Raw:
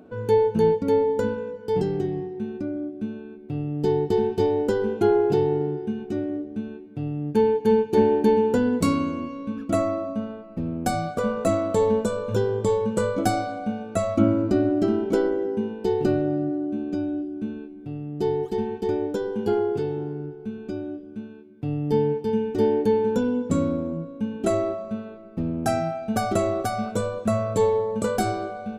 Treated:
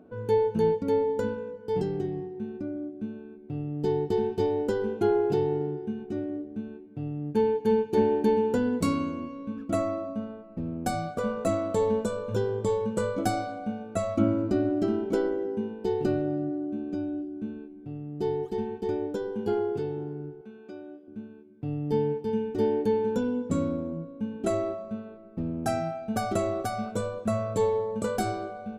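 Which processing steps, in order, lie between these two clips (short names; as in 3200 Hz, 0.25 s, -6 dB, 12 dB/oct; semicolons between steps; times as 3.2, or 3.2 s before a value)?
20.41–21.08 weighting filter A; mismatched tape noise reduction decoder only; gain -4.5 dB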